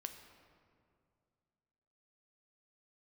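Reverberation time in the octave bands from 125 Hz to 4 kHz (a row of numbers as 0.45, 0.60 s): 2.7, 2.6, 2.4, 2.2, 1.7, 1.2 s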